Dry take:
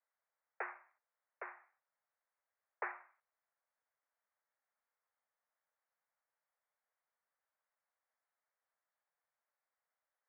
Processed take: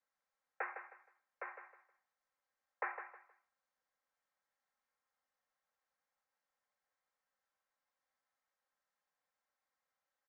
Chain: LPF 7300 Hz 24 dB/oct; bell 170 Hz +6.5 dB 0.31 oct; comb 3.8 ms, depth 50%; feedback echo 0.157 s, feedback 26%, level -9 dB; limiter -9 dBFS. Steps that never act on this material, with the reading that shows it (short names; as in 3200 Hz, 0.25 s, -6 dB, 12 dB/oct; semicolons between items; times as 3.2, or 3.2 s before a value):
LPF 7300 Hz: input band ends at 2700 Hz; bell 170 Hz: input band starts at 340 Hz; limiter -9 dBFS: input peak -23.5 dBFS